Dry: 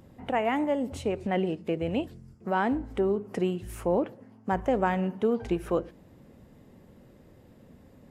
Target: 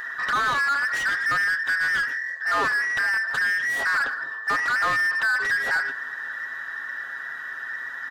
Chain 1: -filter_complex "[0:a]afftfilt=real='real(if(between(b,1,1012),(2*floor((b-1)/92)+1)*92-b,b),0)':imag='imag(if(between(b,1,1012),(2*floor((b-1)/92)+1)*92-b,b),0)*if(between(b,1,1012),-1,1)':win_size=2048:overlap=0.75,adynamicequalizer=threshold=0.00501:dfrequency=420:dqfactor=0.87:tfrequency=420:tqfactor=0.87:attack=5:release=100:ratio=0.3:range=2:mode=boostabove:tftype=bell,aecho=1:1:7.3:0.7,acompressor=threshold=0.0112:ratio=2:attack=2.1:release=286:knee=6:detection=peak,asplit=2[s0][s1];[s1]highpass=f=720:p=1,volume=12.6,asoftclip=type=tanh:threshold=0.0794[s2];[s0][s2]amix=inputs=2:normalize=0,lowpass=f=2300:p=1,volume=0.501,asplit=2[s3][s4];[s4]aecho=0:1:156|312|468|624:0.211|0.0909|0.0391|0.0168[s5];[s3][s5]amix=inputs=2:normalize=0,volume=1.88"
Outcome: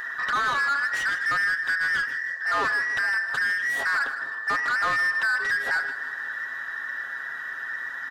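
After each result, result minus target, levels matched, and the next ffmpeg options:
echo-to-direct +12 dB; compression: peak gain reduction +5 dB
-filter_complex "[0:a]afftfilt=real='real(if(between(b,1,1012),(2*floor((b-1)/92)+1)*92-b,b),0)':imag='imag(if(between(b,1,1012),(2*floor((b-1)/92)+1)*92-b,b),0)*if(between(b,1,1012),-1,1)':win_size=2048:overlap=0.75,adynamicequalizer=threshold=0.00501:dfrequency=420:dqfactor=0.87:tfrequency=420:tqfactor=0.87:attack=5:release=100:ratio=0.3:range=2:mode=boostabove:tftype=bell,aecho=1:1:7.3:0.7,acompressor=threshold=0.0112:ratio=2:attack=2.1:release=286:knee=6:detection=peak,asplit=2[s0][s1];[s1]highpass=f=720:p=1,volume=12.6,asoftclip=type=tanh:threshold=0.0794[s2];[s0][s2]amix=inputs=2:normalize=0,lowpass=f=2300:p=1,volume=0.501,asplit=2[s3][s4];[s4]aecho=0:1:156|312:0.0531|0.0228[s5];[s3][s5]amix=inputs=2:normalize=0,volume=1.88"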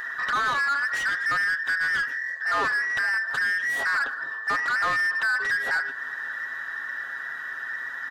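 compression: peak gain reduction +5 dB
-filter_complex "[0:a]afftfilt=real='real(if(between(b,1,1012),(2*floor((b-1)/92)+1)*92-b,b),0)':imag='imag(if(between(b,1,1012),(2*floor((b-1)/92)+1)*92-b,b),0)*if(between(b,1,1012),-1,1)':win_size=2048:overlap=0.75,adynamicequalizer=threshold=0.00501:dfrequency=420:dqfactor=0.87:tfrequency=420:tqfactor=0.87:attack=5:release=100:ratio=0.3:range=2:mode=boostabove:tftype=bell,aecho=1:1:7.3:0.7,acompressor=threshold=0.0355:ratio=2:attack=2.1:release=286:knee=6:detection=peak,asplit=2[s0][s1];[s1]highpass=f=720:p=1,volume=12.6,asoftclip=type=tanh:threshold=0.0794[s2];[s0][s2]amix=inputs=2:normalize=0,lowpass=f=2300:p=1,volume=0.501,asplit=2[s3][s4];[s4]aecho=0:1:156|312:0.0531|0.0228[s5];[s3][s5]amix=inputs=2:normalize=0,volume=1.88"

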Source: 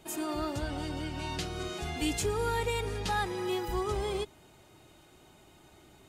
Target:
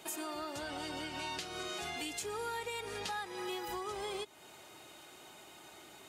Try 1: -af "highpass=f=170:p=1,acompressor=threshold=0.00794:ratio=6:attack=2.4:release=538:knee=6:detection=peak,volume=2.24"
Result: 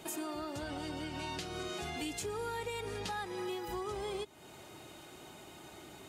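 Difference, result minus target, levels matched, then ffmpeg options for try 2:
125 Hz band +7.5 dB
-af "highpass=f=680:p=1,acompressor=threshold=0.00794:ratio=6:attack=2.4:release=538:knee=6:detection=peak,volume=2.24"

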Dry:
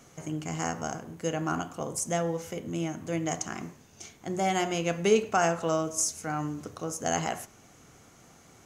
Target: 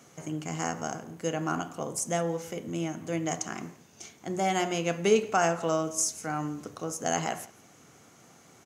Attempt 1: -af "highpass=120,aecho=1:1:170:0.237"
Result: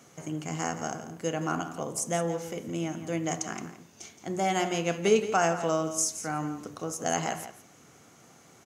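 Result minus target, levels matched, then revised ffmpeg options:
echo-to-direct +10.5 dB
-af "highpass=120,aecho=1:1:170:0.0708"

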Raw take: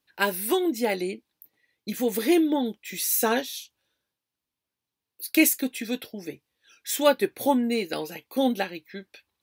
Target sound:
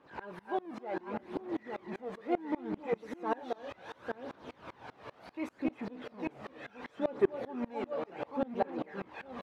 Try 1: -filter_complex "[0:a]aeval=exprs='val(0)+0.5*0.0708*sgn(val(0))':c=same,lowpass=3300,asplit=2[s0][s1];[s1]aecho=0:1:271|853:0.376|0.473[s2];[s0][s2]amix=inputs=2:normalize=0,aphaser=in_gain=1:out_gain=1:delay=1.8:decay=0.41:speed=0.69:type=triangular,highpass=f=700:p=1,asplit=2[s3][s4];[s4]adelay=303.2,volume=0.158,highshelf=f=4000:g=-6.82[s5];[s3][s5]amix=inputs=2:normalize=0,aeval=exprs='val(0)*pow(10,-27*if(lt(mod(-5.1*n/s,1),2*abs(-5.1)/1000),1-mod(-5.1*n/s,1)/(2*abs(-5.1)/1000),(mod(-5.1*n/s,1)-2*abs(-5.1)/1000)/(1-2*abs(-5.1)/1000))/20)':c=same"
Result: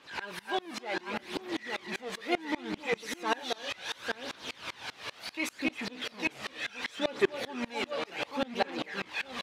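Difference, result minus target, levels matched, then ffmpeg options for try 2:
4 kHz band +16.0 dB
-filter_complex "[0:a]aeval=exprs='val(0)+0.5*0.0708*sgn(val(0))':c=same,lowpass=930,asplit=2[s0][s1];[s1]aecho=0:1:271|853:0.376|0.473[s2];[s0][s2]amix=inputs=2:normalize=0,aphaser=in_gain=1:out_gain=1:delay=1.8:decay=0.41:speed=0.69:type=triangular,highpass=f=700:p=1,asplit=2[s3][s4];[s4]adelay=303.2,volume=0.158,highshelf=f=4000:g=-6.82[s5];[s3][s5]amix=inputs=2:normalize=0,aeval=exprs='val(0)*pow(10,-27*if(lt(mod(-5.1*n/s,1),2*abs(-5.1)/1000),1-mod(-5.1*n/s,1)/(2*abs(-5.1)/1000),(mod(-5.1*n/s,1)-2*abs(-5.1)/1000)/(1-2*abs(-5.1)/1000))/20)':c=same"

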